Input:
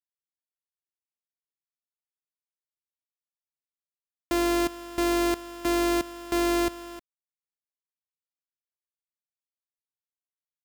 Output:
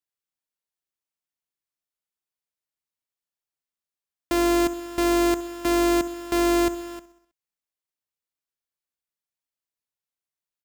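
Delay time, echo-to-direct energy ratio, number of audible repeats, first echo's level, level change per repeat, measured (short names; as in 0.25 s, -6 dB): 64 ms, -14.5 dB, 4, -16.5 dB, -4.5 dB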